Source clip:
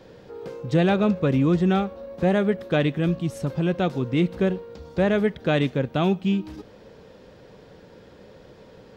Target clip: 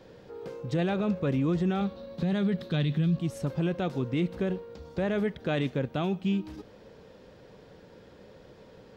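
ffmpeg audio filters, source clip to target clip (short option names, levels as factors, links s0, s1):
-filter_complex "[0:a]asettb=1/sr,asplit=3[s0][s1][s2];[s0]atrim=end=1.814[s3];[s1]atrim=start=1.81:end=3.17,asetpts=PTS-STARTPTS,afade=t=in:d=0.004:c=qsin,afade=t=out:st=1.356:d=0.004:c=qsin,equalizer=f=160:t=o:w=0.67:g=12,equalizer=f=630:t=o:w=0.67:g=-3,equalizer=f=4000:t=o:w=0.67:g=12[s4];[s2]atrim=start=3.166[s5];[s3][s4]acrossfade=d=0.004:c1=hsin:c2=qsin[s6];[s6][s5]acrossfade=d=0.004:c1=qsin:c2=hsin,alimiter=limit=0.158:level=0:latency=1:release=27,volume=0.631"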